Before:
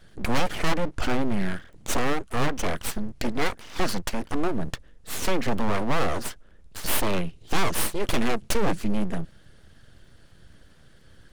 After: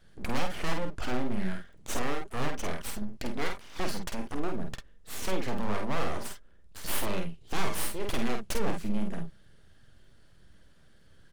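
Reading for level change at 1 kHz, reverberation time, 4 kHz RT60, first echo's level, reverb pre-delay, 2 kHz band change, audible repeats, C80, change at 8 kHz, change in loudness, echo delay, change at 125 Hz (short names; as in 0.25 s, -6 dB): -6.5 dB, none, none, -5.5 dB, none, -7.0 dB, 1, none, -6.5 dB, -6.5 dB, 48 ms, -6.5 dB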